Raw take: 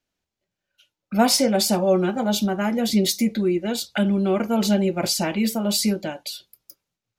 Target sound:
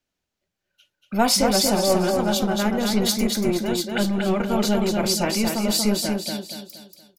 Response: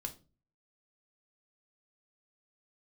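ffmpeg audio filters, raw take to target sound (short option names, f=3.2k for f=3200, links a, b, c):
-filter_complex "[0:a]aecho=1:1:235|470|705|940|1175:0.596|0.238|0.0953|0.0381|0.0152,acrossover=split=570|1800[a][b][c];[a]aeval=exprs='clip(val(0),-1,0.0531)':c=same[d];[d][b][c]amix=inputs=3:normalize=0"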